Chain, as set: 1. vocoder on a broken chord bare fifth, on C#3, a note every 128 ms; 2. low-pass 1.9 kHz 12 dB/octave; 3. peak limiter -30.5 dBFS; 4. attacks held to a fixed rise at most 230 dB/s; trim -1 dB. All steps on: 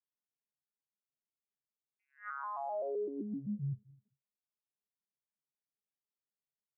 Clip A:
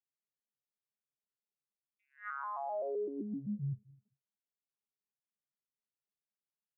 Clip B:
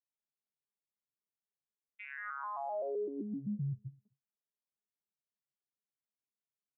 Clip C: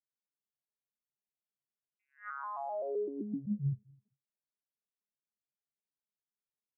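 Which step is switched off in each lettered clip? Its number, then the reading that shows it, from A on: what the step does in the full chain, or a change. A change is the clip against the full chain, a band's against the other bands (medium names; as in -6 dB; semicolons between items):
2, 2 kHz band +1.5 dB; 4, 2 kHz band +4.5 dB; 3, crest factor change +4.5 dB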